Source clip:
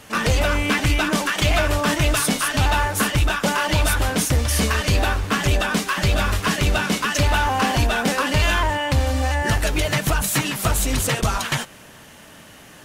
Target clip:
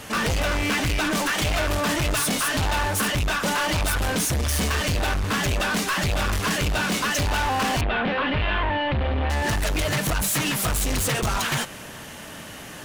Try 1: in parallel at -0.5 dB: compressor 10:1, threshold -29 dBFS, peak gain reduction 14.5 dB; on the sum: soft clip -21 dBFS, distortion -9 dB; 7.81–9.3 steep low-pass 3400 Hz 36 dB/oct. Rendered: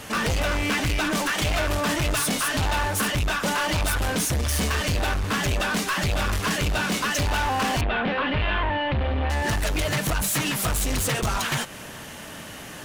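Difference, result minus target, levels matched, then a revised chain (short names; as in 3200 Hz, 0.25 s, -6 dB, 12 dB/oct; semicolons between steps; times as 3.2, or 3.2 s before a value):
compressor: peak gain reduction +9 dB
in parallel at -0.5 dB: compressor 10:1, threshold -19 dBFS, peak gain reduction 5.5 dB; on the sum: soft clip -21 dBFS, distortion -8 dB; 7.81–9.3 steep low-pass 3400 Hz 36 dB/oct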